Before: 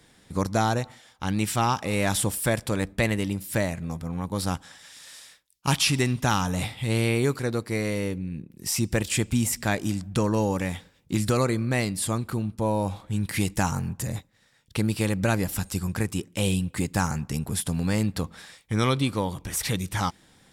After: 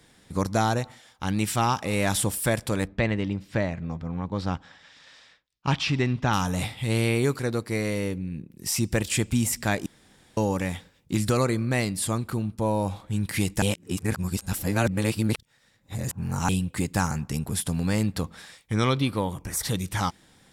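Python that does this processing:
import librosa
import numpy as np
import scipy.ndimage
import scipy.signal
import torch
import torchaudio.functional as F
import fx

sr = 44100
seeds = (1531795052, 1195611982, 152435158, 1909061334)

y = fx.air_absorb(x, sr, metres=180.0, at=(2.86, 6.32), fade=0.02)
y = fx.peak_eq(y, sr, hz=fx.line((18.73, 14000.0), (19.74, 2100.0)), db=-15.0, octaves=0.36, at=(18.73, 19.74), fade=0.02)
y = fx.edit(y, sr, fx.room_tone_fill(start_s=9.86, length_s=0.51),
    fx.reverse_span(start_s=13.62, length_s=2.87), tone=tone)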